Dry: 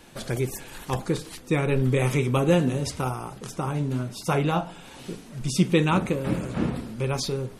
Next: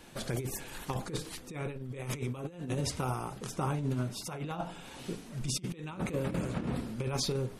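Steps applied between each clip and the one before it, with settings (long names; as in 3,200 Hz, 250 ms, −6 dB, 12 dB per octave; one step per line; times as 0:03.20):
compressor whose output falls as the input rises −27 dBFS, ratio −0.5
level −6.5 dB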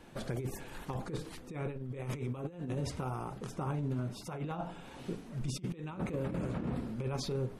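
high-shelf EQ 2,600 Hz −10.5 dB
brickwall limiter −27 dBFS, peak gain reduction 6 dB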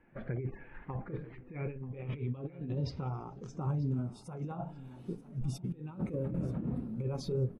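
low-pass filter sweep 2,100 Hz → 12,000 Hz, 0:01.40–0:04.66
repeating echo 935 ms, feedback 33%, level −12 dB
every bin expanded away from the loudest bin 1.5 to 1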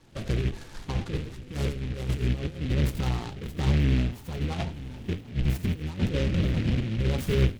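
sub-octave generator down 1 octave, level +2 dB
delay with a high-pass on its return 86 ms, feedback 46%, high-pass 3,100 Hz, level −7 dB
short delay modulated by noise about 2,300 Hz, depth 0.12 ms
level +6.5 dB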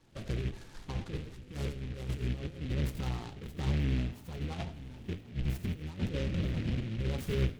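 convolution reverb RT60 0.60 s, pre-delay 50 ms, DRR 18 dB
level −7.5 dB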